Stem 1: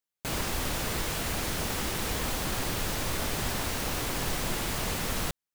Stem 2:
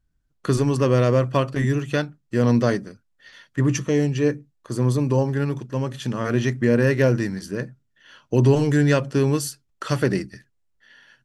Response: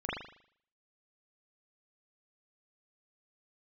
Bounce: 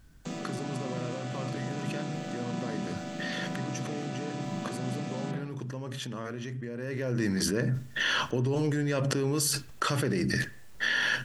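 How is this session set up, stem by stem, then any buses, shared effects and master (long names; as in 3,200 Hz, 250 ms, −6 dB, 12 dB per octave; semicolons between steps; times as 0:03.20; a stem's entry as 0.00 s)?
−6.0 dB, 0.00 s, send −3.5 dB, channel vocoder with a chord as carrier minor triad, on E3; bass and treble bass +7 dB, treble +9 dB; automatic ducking −10 dB, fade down 0.20 s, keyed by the second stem
0:06.75 −21 dB → 0:07.23 −11.5 dB, 0.00 s, send −22 dB, low-shelf EQ 73 Hz −8.5 dB; brickwall limiter −11.5 dBFS, peak gain reduction 5.5 dB; envelope flattener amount 100%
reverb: on, RT60 0.60 s, pre-delay 39 ms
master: no processing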